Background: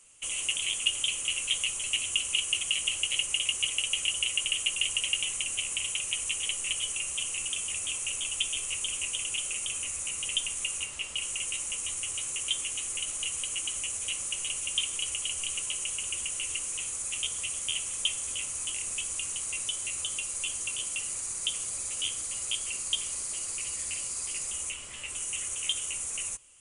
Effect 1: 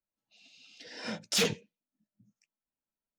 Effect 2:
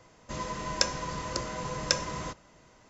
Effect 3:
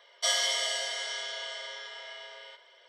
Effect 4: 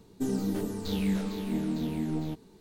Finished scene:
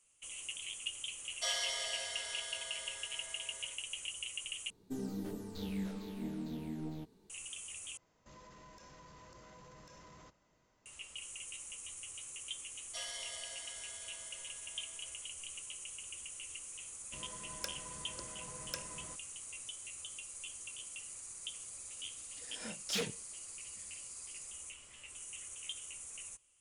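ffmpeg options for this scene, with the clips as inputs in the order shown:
-filter_complex "[3:a]asplit=2[a][b];[2:a]asplit=2[c][d];[0:a]volume=-13.5dB[e];[c]acompressor=threshold=-35dB:ratio=12:attack=0.13:release=31:knee=6:detection=peak[f];[d]aeval=exprs='(mod(1.88*val(0)+1,2)-1)/1.88':c=same[g];[e]asplit=3[h][i][j];[h]atrim=end=4.704[k];[4:a]atrim=end=2.6,asetpts=PTS-STARTPTS,volume=-10.5dB[l];[i]atrim=start=7.296:end=7.974[m];[f]atrim=end=2.89,asetpts=PTS-STARTPTS,volume=-15.5dB[n];[j]atrim=start=10.856[o];[a]atrim=end=2.88,asetpts=PTS-STARTPTS,volume=-9dB,afade=t=in:d=0.004:c=hsin,afade=t=out:st=2.876:d=0.004:c=hsin,adelay=1190[p];[b]atrim=end=2.88,asetpts=PTS-STARTPTS,volume=-17.5dB,afade=t=in:d=0.004:c=hsin,afade=t=out:st=2.876:d=0.004:c=hsin,adelay=12710[q];[g]atrim=end=2.89,asetpts=PTS-STARTPTS,volume=-16dB,afade=t=in:d=0.004:c=hsin,afade=t=out:st=2.886:d=0.004:c=hsin,adelay=16830[r];[1:a]atrim=end=3.18,asetpts=PTS-STARTPTS,volume=-9dB,afade=t=in:d=0.004:c=hsin,afade=t=out:st=3.176:d=0.004:c=hsin,adelay=21570[s];[k][l]acrossfade=d=0.004:c1=hsin:c2=hsin[t];[t][m]acrossfade=d=0.004:c1=hsin:c2=hsin[u];[u][n]acrossfade=d=0.004:c1=hsin:c2=hsin[v];[v][o]acrossfade=d=0.004:c1=hsin:c2=hsin[w];[w][p][q][r][s]amix=inputs=5:normalize=0"

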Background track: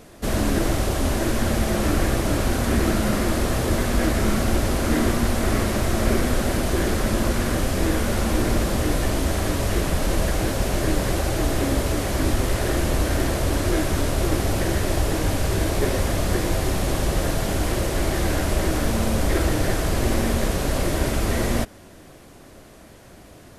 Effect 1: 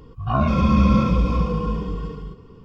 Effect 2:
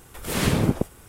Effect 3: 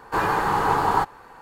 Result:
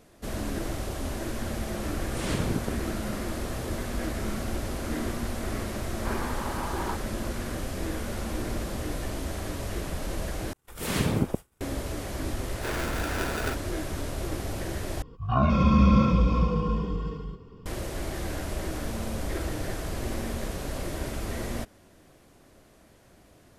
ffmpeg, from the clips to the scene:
-filter_complex "[2:a]asplit=2[a][b];[3:a]asplit=2[c][d];[0:a]volume=-10.5dB[e];[a]aresample=22050,aresample=44100[f];[c]highpass=840[g];[b]agate=range=-33dB:threshold=-38dB:ratio=3:release=100:detection=peak[h];[d]aeval=exprs='val(0)*sgn(sin(2*PI*530*n/s))':c=same[i];[e]asplit=3[j][k][l];[j]atrim=end=10.534[m];[h]atrim=end=1.08,asetpts=PTS-STARTPTS,volume=-4.5dB[n];[k]atrim=start=11.606:end=15.024[o];[1:a]atrim=end=2.64,asetpts=PTS-STARTPTS,volume=-3dB[p];[l]atrim=start=17.656[q];[f]atrim=end=1.08,asetpts=PTS-STARTPTS,volume=-8.5dB,afade=t=in:d=0.004:c=hsin,afade=t=out:st=1.076:d=0.004:c=hsin,adelay=1870[r];[g]atrim=end=1.41,asetpts=PTS-STARTPTS,volume=-12.5dB,afade=t=in:d=0.004:c=hsin,afade=t=out:st=1.406:d=0.004:c=hsin,adelay=5920[s];[i]atrim=end=1.41,asetpts=PTS-STARTPTS,volume=-12dB,afade=t=in:d=0.004:c=hsin,afade=t=out:st=1.406:d=0.004:c=hsin,adelay=12500[t];[m][n]acrossfade=d=0.004:c1=hsin:c2=hsin[u];[u][o]acrossfade=d=0.004:c1=hsin:c2=hsin[v];[v][p]acrossfade=d=0.004:c1=hsin:c2=hsin[w];[w][q]acrossfade=d=0.004:c1=hsin:c2=hsin[x];[x][r][s][t]amix=inputs=4:normalize=0"

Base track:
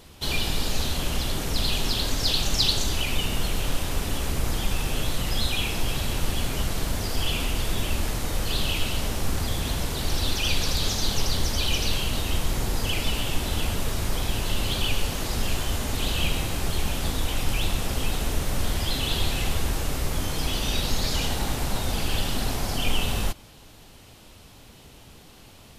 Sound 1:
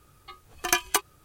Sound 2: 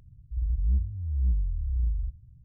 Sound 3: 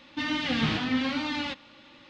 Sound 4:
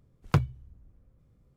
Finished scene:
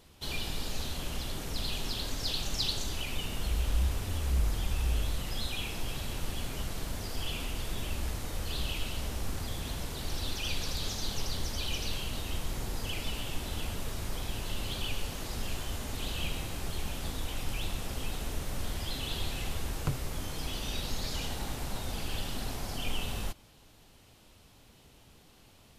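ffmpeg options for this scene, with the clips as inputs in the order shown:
-filter_complex "[2:a]asplit=2[a][b];[0:a]volume=-9.5dB[c];[a]atrim=end=2.44,asetpts=PTS-STARTPTS,volume=-4dB,afade=t=in:d=0.004:c=hsin,afade=t=out:st=2.436:d=0.004:c=hsin,adelay=136269S[d];[b]atrim=end=2.44,asetpts=PTS-STARTPTS,volume=-15dB,afade=t=in:d=0.004:c=hsin,afade=t=out:st=2.436:d=0.004:c=hsin,adelay=7330[e];[4:a]atrim=end=1.56,asetpts=PTS-STARTPTS,volume=-10.5dB,afade=t=in:d=0.004:c=hsin,afade=t=out:st=1.556:d=0.004:c=hsin,adelay=19530[f];[c][d][e][f]amix=inputs=4:normalize=0"

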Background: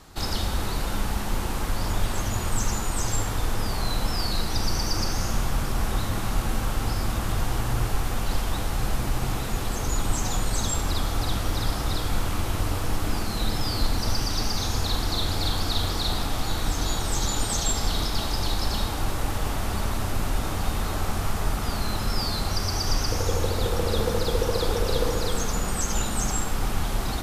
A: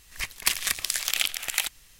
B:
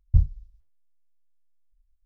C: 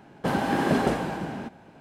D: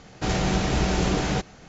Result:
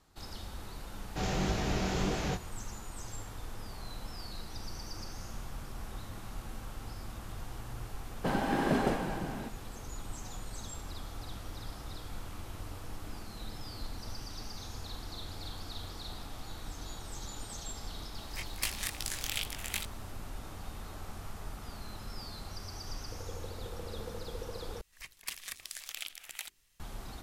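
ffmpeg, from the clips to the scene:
-filter_complex "[1:a]asplit=2[a][b];[0:a]volume=-17dB[c];[4:a]flanger=delay=18:depth=7.6:speed=1.6[d];[a]flanger=delay=17:depth=6.7:speed=2.3[e];[b]bandreject=f=50:t=h:w=6,bandreject=f=100:t=h:w=6,bandreject=f=150:t=h:w=6,bandreject=f=200:t=h:w=6,bandreject=f=250:t=h:w=6,bandreject=f=300:t=h:w=6,bandreject=f=350:t=h:w=6,bandreject=f=400:t=h:w=6[f];[c]asplit=2[g][h];[g]atrim=end=24.814[i];[f]atrim=end=1.99,asetpts=PTS-STARTPTS,volume=-16dB[j];[h]atrim=start=26.796[k];[d]atrim=end=1.68,asetpts=PTS-STARTPTS,volume=-5.5dB,afade=t=in:d=0.004:c=hsin,afade=t=out:st=1.676:d=0.004:c=hsin,adelay=940[l];[3:a]atrim=end=1.8,asetpts=PTS-STARTPTS,volume=-6dB,afade=t=in:d=0.004:c=hsin,afade=t=out:st=1.796:d=0.004:c=hsin,adelay=8000[m];[e]atrim=end=1.99,asetpts=PTS-STARTPTS,volume=-7dB,afade=t=in:d=0.004:c=hsin,afade=t=out:st=1.986:d=0.004:c=hsin,adelay=18160[n];[i][j]acrossfade=d=0.004:c1=hsin:c2=hsin[o];[o][k]acrossfade=d=0.004:c1=hsin:c2=hsin[p];[p][l][m][n]amix=inputs=4:normalize=0"

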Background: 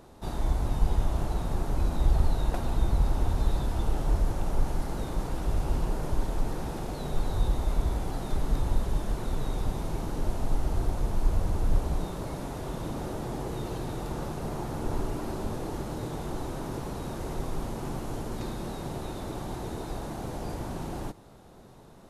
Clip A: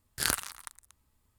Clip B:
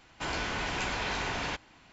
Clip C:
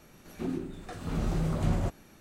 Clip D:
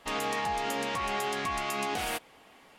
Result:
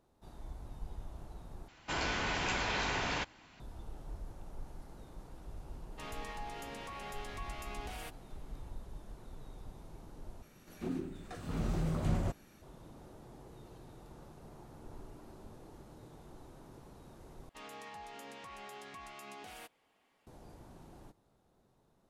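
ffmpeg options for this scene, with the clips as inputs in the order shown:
-filter_complex "[4:a]asplit=2[a][b];[0:a]volume=-19.5dB,asplit=4[c][d][e][f];[c]atrim=end=1.684[g];[2:a]atrim=end=1.92,asetpts=PTS-STARTPTS,volume=-1.5dB[h];[d]atrim=start=3.596:end=10.424[i];[3:a]atrim=end=2.2,asetpts=PTS-STARTPTS,volume=-4.5dB[j];[e]atrim=start=12.616:end=17.494[k];[b]atrim=end=2.78,asetpts=PTS-STARTPTS,volume=-17.5dB[l];[f]atrim=start=20.266[m];[a]atrim=end=2.78,asetpts=PTS-STARTPTS,volume=-14dB,afade=t=in:d=0.004:c=hsin,afade=t=out:st=2.776:d=0.004:c=hsin,adelay=5920[n];[g][h]acrossfade=d=0.004:c1=hsin:c2=hsin[o];[o][i]acrossfade=d=0.004:c1=hsin:c2=hsin[p];[p][j]acrossfade=d=0.004:c1=hsin:c2=hsin[q];[q][k]acrossfade=d=0.004:c1=hsin:c2=hsin[r];[r][l]acrossfade=d=0.004:c1=hsin:c2=hsin[s];[s][m]acrossfade=d=0.004:c1=hsin:c2=hsin[t];[t][n]amix=inputs=2:normalize=0"

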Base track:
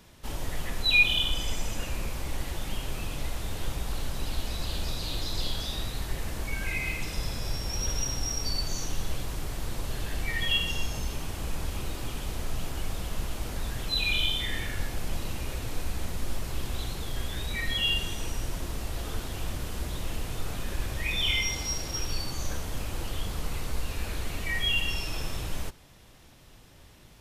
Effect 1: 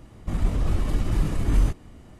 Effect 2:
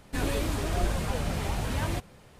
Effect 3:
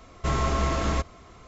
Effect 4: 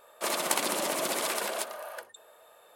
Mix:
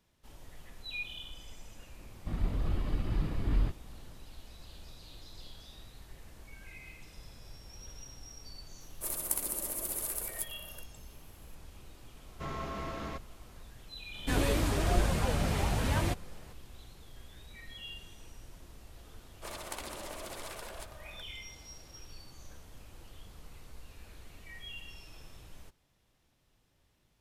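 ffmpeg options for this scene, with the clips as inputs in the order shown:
-filter_complex "[4:a]asplit=2[a][b];[0:a]volume=-18.5dB[c];[1:a]aresample=11025,aresample=44100[d];[a]firequalizer=gain_entry='entry(320,0);entry(710,-7);entry(3400,-8);entry(11000,14)':delay=0.05:min_phase=1[e];[3:a]highpass=100,lowpass=4.6k[f];[b]equalizer=f=14k:w=0.5:g=-3.5[g];[d]atrim=end=2.19,asetpts=PTS-STARTPTS,volume=-8.5dB,afade=t=in:d=0.004:c=hsin,afade=t=out:st=2.186:d=0.004:c=hsin,adelay=1990[h];[e]atrim=end=2.75,asetpts=PTS-STARTPTS,volume=-11dB,afade=t=in:d=0.004:c=hsin,afade=t=out:st=2.746:d=0.004:c=hsin,adelay=8800[i];[f]atrim=end=1.47,asetpts=PTS-STARTPTS,volume=-12dB,afade=t=in:d=0.004:c=hsin,afade=t=out:st=1.466:d=0.004:c=hsin,adelay=12160[j];[2:a]atrim=end=2.39,asetpts=PTS-STARTPTS,afade=t=in:d=0.004:c=hsin,afade=t=out:st=2.386:d=0.004:c=hsin,adelay=14140[k];[g]atrim=end=2.75,asetpts=PTS-STARTPTS,volume=-13dB,afade=t=in:d=0.004:c=hsin,afade=t=out:st=2.746:d=0.004:c=hsin,adelay=19210[l];[c][h][i][j][k][l]amix=inputs=6:normalize=0"

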